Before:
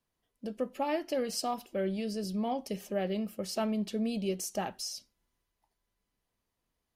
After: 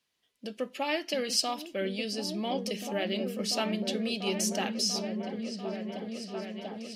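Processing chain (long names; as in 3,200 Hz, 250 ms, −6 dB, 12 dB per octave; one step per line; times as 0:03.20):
meter weighting curve D
on a send: echo whose low-pass opens from repeat to repeat 691 ms, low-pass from 200 Hz, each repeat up 1 octave, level 0 dB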